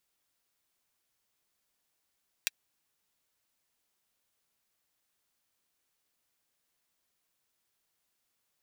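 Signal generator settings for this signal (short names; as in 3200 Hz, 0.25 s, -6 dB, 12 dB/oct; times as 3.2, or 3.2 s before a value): closed hi-hat, high-pass 2200 Hz, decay 0.03 s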